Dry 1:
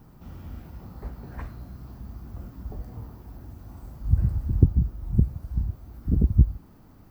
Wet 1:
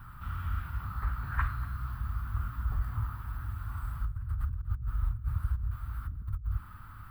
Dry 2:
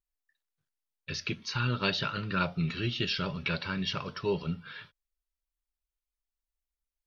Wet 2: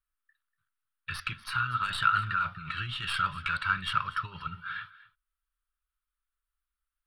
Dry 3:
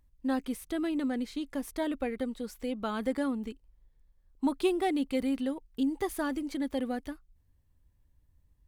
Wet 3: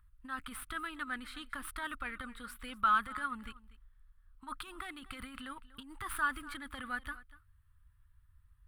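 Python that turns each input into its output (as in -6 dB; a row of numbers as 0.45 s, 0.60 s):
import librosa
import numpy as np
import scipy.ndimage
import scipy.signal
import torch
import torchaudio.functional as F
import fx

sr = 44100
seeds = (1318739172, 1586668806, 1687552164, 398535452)

y = fx.tracing_dist(x, sr, depth_ms=0.039)
y = fx.high_shelf(y, sr, hz=7900.0, db=-3.0)
y = fx.over_compress(y, sr, threshold_db=-32.0, ratio=-1.0)
y = fx.curve_eq(y, sr, hz=(110.0, 160.0, 450.0, 730.0, 1300.0, 2100.0, 3400.0, 6400.0, 9200.0, 13000.0), db=(0, -11, -22, -14, 13, 0, 0, -15, 3, -1))
y = y + 10.0 ** (-18.5 / 20.0) * np.pad(y, (int(241 * sr / 1000.0), 0))[:len(y)]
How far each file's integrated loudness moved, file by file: -10.5 LU, +1.0 LU, -6.0 LU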